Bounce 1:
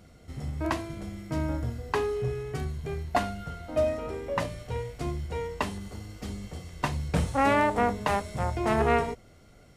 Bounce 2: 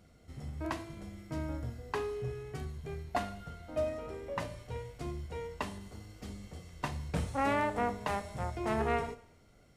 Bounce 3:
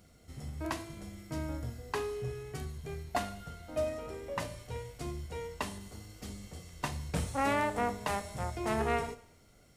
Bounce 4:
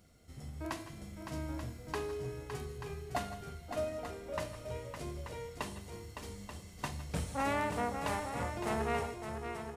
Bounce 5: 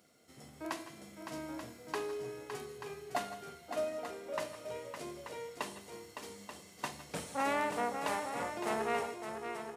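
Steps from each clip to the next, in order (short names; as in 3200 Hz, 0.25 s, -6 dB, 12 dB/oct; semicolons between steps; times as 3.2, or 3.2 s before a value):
Schroeder reverb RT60 0.71 s, combs from 25 ms, DRR 14 dB; gain -7.5 dB
high shelf 4700 Hz +9 dB
tapped delay 0.154/0.164/0.561/0.884 s -19/-17/-7.5/-9.5 dB; gain -3.5 dB
HPF 260 Hz 12 dB/oct; gain +1 dB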